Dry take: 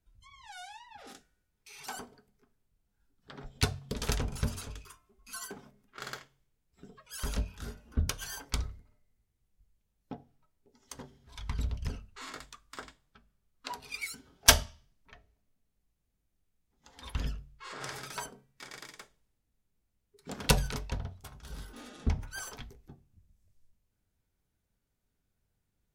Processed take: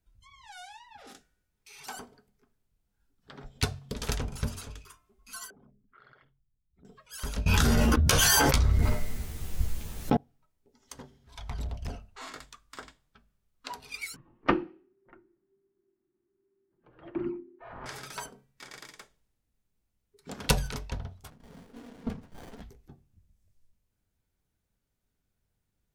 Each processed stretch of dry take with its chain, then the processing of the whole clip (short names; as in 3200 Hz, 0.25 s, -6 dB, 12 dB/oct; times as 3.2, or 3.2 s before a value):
5.5–6.85 formant sharpening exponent 2 + LPF 3900 Hz 24 dB/oct + compressor 12:1, threshold -53 dBFS
7.46–10.17 doubler 13 ms -5 dB + fast leveller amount 100%
11.37–12.28 bell 700 Hz +13 dB 0.62 oct + overloaded stage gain 29.5 dB
14.16–17.86 LPF 2200 Hz 24 dB/oct + frequency shift -400 Hz
21.3–22.62 HPF 110 Hz 24 dB/oct + comb 4.3 ms, depth 72% + running maximum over 33 samples
whole clip: dry